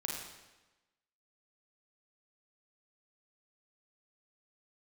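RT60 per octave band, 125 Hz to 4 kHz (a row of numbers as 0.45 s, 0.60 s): 1.1 s, 1.1 s, 1.1 s, 1.1 s, 1.1 s, 1.0 s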